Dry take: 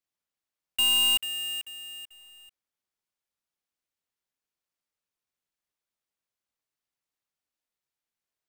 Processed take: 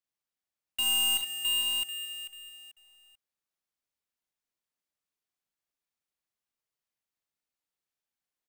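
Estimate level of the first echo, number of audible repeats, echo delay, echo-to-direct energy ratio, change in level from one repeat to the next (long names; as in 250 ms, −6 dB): −5.5 dB, 3, 41 ms, −0.5 dB, repeats not evenly spaced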